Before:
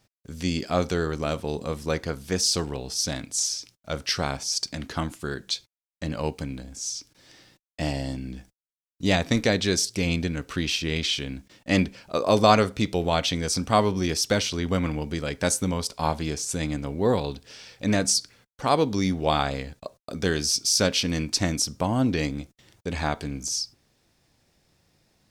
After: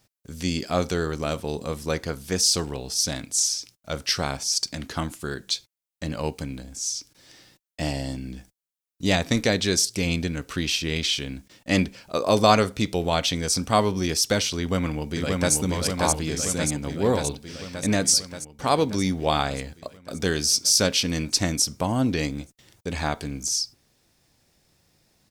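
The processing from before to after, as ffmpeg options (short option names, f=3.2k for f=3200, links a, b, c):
-filter_complex "[0:a]asplit=2[a][b];[b]afade=t=in:st=14.58:d=0.01,afade=t=out:st=15.54:d=0.01,aecho=0:1:580|1160|1740|2320|2900|3480|4060|4640|5220|5800|6380|6960:0.749894|0.524926|0.367448|0.257214|0.18005|0.126035|0.0882243|0.061757|0.0432299|0.0302609|0.0211827|0.0148279[c];[a][c]amix=inputs=2:normalize=0,highshelf=f=6.6k:g=7"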